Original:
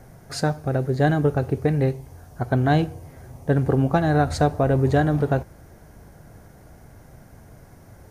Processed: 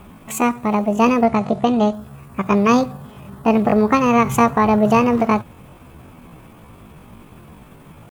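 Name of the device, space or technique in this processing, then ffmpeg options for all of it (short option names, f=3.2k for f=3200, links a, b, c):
chipmunk voice: -filter_complex "[0:a]asettb=1/sr,asplit=3[a][b][c];[a]atrim=end=1.274[d];[b]atrim=start=1.27:end=1.95,asetpts=PTS-STARTPTS,afade=t=in:d=0.004:c=qsin,afade=t=out:st=0.676:d=0.004:c=qsin,lowpass=f=5.9k:w=0.5412,lowpass=f=5.9k:w=1.3066[e];[c]atrim=start=1.946[f];[d][e]acrossfade=d=0.004:c1=hsin:c2=qsin[g];[g][f]acrossfade=d=0.004:c1=qsin:c2=hsin,asetrate=70004,aresample=44100,atempo=0.629961,volume=4.5dB"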